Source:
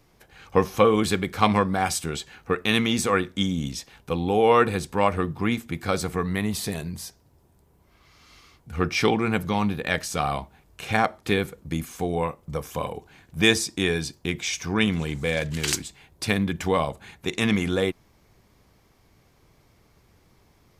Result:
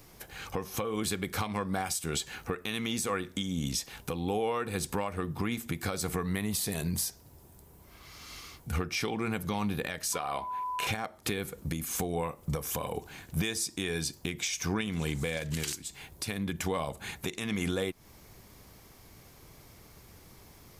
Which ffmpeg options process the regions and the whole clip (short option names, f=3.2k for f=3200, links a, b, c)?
-filter_complex "[0:a]asettb=1/sr,asplit=3[a][b][c];[a]atrim=end=10.134[d];[b]atrim=start=10.13:end=10.87,asetpts=PTS-STARTPTS,afade=t=in:d=0.004:c=qsin,afade=t=out:st=0.736:d=0.004:c=qsin,bass=f=250:g=-13,treble=f=4k:g=-7,aeval=exprs='val(0)+0.0158*sin(2*PI*1000*n/s)':c=same[e];[c]atrim=start=10.866[f];[d][e]acrossfade=d=0.004:c1=hsin:c2=qsin[g];[g][f]acrossfade=d=0.004:c1=qsin:c2=hsin,highshelf=f=7k:g=11.5,acompressor=threshold=-30dB:ratio=10,alimiter=level_in=1dB:limit=-24dB:level=0:latency=1:release=243,volume=-1dB,volume=4.5dB"